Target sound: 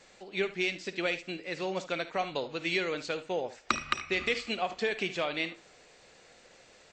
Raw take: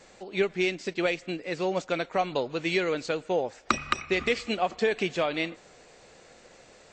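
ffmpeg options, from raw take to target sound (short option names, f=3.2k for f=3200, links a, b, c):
-filter_complex "[0:a]equalizer=f=3.2k:t=o:w=2.5:g=5.5,asplit=2[a][b];[b]aecho=0:1:53|74:0.15|0.178[c];[a][c]amix=inputs=2:normalize=0,volume=-6.5dB"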